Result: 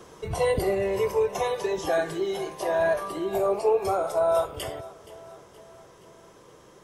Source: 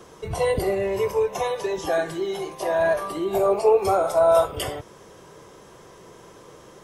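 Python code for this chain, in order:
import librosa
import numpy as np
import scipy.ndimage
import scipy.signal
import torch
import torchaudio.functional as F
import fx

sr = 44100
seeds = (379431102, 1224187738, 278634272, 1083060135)

p1 = fx.rider(x, sr, range_db=3, speed_s=2.0)
p2 = p1 + fx.echo_feedback(p1, sr, ms=473, feedback_pct=53, wet_db=-19.0, dry=0)
y = F.gain(torch.from_numpy(p2), -3.5).numpy()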